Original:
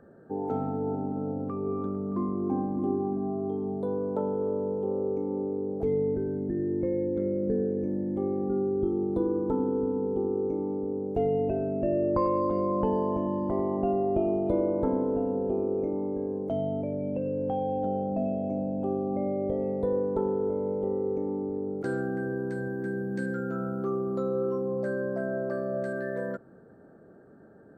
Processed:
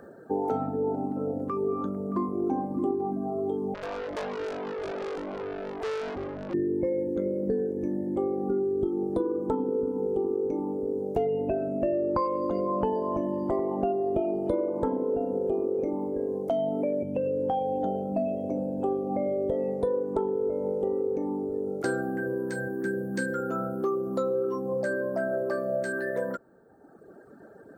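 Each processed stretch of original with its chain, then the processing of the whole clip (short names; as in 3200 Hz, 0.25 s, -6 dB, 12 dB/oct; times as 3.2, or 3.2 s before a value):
3.74–6.54 tube stage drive 35 dB, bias 0.45 + Doppler distortion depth 0.86 ms
16.5–17.03 HPF 170 Hz 24 dB/oct + fast leveller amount 70%
whole clip: reverb removal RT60 1.5 s; tone controls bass -8 dB, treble +7 dB; compressor 4:1, threshold -33 dBFS; gain +9 dB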